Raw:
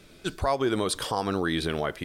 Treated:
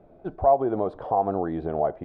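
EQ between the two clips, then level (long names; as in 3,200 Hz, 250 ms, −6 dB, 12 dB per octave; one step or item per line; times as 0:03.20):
low-pass with resonance 720 Hz, resonance Q 4.9
−2.5 dB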